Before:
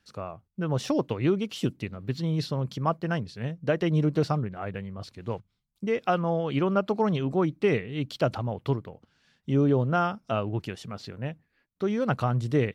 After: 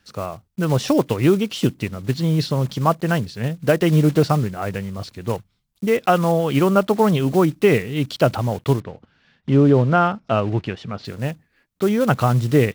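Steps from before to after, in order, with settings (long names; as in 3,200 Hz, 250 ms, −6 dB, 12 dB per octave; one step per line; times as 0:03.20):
one scale factor per block 5 bits
0:08.80–0:11.05: low-pass filter 3,400 Hz 12 dB per octave
level +8.5 dB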